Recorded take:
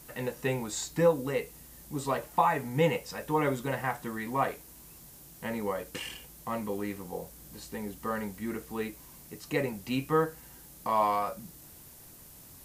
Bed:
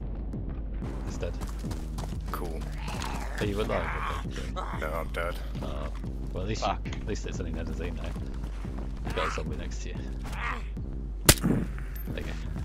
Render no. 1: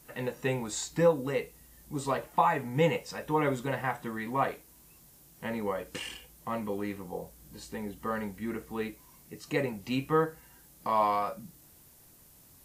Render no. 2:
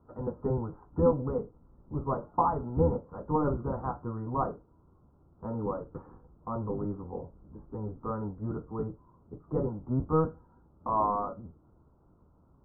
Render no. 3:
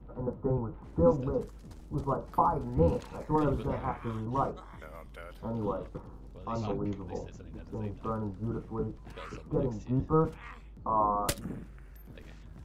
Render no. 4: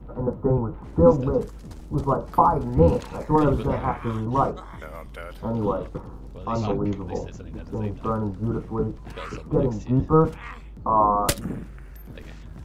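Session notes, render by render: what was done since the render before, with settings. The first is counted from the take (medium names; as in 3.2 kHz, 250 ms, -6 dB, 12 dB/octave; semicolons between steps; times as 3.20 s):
noise print and reduce 6 dB
octave divider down 1 oct, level +2 dB; rippled Chebyshev low-pass 1.4 kHz, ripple 3 dB
add bed -14.5 dB
trim +8.5 dB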